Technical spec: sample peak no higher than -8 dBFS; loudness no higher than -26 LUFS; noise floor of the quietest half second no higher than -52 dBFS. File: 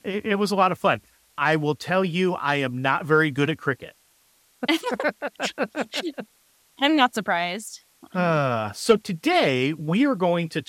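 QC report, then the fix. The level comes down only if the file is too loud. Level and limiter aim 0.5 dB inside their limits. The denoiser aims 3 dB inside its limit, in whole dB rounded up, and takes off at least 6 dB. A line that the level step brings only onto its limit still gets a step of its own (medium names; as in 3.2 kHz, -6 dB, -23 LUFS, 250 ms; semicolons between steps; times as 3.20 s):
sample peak -5.0 dBFS: fail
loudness -23.0 LUFS: fail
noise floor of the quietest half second -62 dBFS: pass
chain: trim -3.5 dB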